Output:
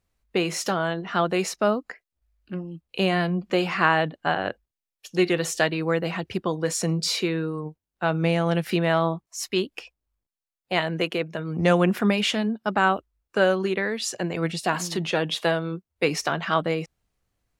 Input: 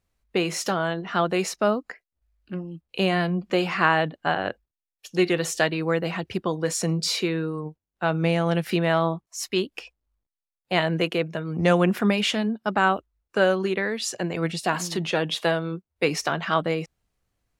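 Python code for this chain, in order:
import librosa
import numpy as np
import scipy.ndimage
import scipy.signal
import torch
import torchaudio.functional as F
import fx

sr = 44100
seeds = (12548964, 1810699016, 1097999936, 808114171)

y = fx.hpss(x, sr, part='harmonic', gain_db=-4, at=(9.75, 11.39))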